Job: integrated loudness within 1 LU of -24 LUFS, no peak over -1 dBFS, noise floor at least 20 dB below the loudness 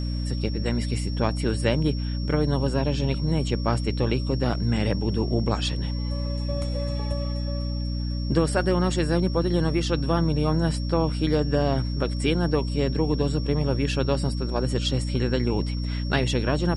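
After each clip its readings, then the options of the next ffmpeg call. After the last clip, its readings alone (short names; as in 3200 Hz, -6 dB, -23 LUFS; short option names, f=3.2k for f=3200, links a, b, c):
hum 60 Hz; harmonics up to 300 Hz; hum level -25 dBFS; steady tone 5500 Hz; tone level -40 dBFS; loudness -25.0 LUFS; peak -7.5 dBFS; loudness target -24.0 LUFS
-> -af "bandreject=f=60:t=h:w=6,bandreject=f=120:t=h:w=6,bandreject=f=180:t=h:w=6,bandreject=f=240:t=h:w=6,bandreject=f=300:t=h:w=6"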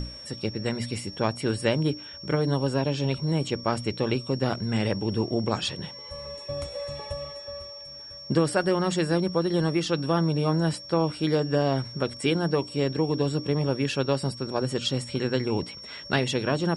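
hum none; steady tone 5500 Hz; tone level -40 dBFS
-> -af "bandreject=f=5.5k:w=30"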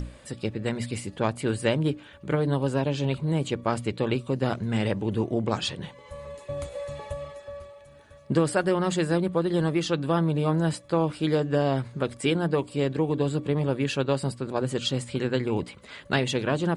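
steady tone none; loudness -27.0 LUFS; peak -8.5 dBFS; loudness target -24.0 LUFS
-> -af "volume=3dB"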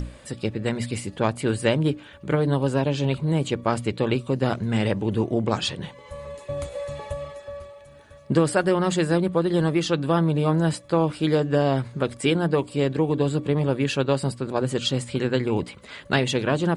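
loudness -24.0 LUFS; peak -5.5 dBFS; noise floor -47 dBFS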